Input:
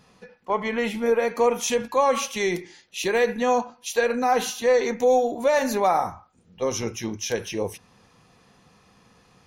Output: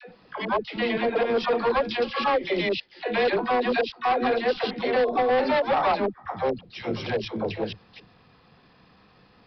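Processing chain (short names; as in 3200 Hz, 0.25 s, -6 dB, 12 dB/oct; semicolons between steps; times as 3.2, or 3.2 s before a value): slices in reverse order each 0.112 s, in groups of 3; dispersion lows, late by 97 ms, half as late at 380 Hz; vibrato 0.44 Hz 9.6 cents; harmoniser +7 st -8 dB; overloaded stage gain 18 dB; downsampling 11025 Hz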